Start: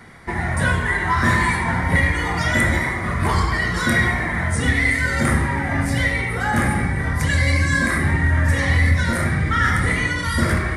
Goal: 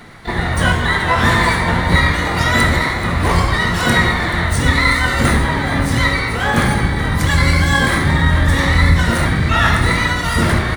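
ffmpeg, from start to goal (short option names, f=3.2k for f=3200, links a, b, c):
-filter_complex "[0:a]aecho=1:1:431|862|1293|1724:0.188|0.0791|0.0332|0.014,asplit=4[a][b][c][d];[b]asetrate=22050,aresample=44100,atempo=2,volume=-9dB[e];[c]asetrate=29433,aresample=44100,atempo=1.49831,volume=-8dB[f];[d]asetrate=88200,aresample=44100,atempo=0.5,volume=-9dB[g];[a][e][f][g]amix=inputs=4:normalize=0,volume=3dB"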